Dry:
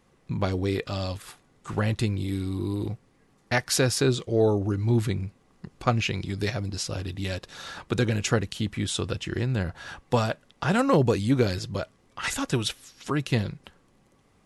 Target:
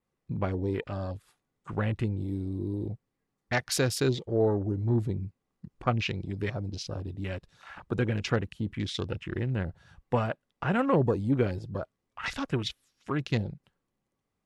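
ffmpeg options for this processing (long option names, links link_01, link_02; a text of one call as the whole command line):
ffmpeg -i in.wav -af "adynamicequalizer=threshold=0.00355:dfrequency=6300:dqfactor=2.1:tfrequency=6300:tqfactor=2.1:attack=5:release=100:ratio=0.375:range=2.5:mode=cutabove:tftype=bell,afwtdn=0.0141,volume=-3.5dB" out.wav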